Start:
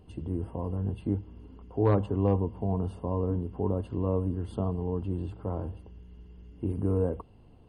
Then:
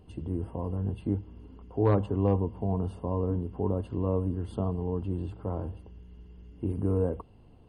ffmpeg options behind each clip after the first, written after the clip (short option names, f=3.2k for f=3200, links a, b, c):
-af anull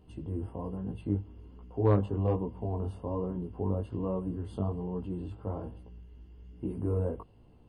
-af "flanger=delay=16:depth=4.3:speed=1.2"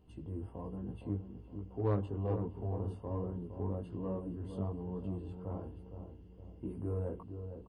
-filter_complex "[0:a]asplit=2[a][b];[b]asoftclip=type=tanh:threshold=-29.5dB,volume=-8dB[c];[a][c]amix=inputs=2:normalize=0,asplit=2[d][e];[e]adelay=463,lowpass=f=860:p=1,volume=-7.5dB,asplit=2[f][g];[g]adelay=463,lowpass=f=860:p=1,volume=0.5,asplit=2[h][i];[i]adelay=463,lowpass=f=860:p=1,volume=0.5,asplit=2[j][k];[k]adelay=463,lowpass=f=860:p=1,volume=0.5,asplit=2[l][m];[m]adelay=463,lowpass=f=860:p=1,volume=0.5,asplit=2[n][o];[o]adelay=463,lowpass=f=860:p=1,volume=0.5[p];[d][f][h][j][l][n][p]amix=inputs=7:normalize=0,volume=-8.5dB"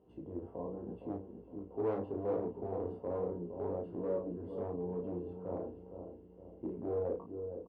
-filter_complex "[0:a]volume=33.5dB,asoftclip=hard,volume=-33.5dB,bandpass=f=490:t=q:w=1.3:csg=0,asplit=2[a][b];[b]adelay=34,volume=-5dB[c];[a][c]amix=inputs=2:normalize=0,volume=6dB"